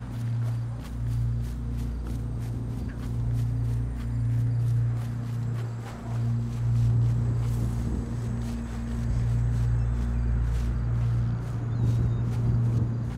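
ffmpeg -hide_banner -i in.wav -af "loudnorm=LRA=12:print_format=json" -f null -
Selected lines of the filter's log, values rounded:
"input_i" : "-28.2",
"input_tp" : "-14.0",
"input_lra" : "3.4",
"input_thresh" : "-38.2",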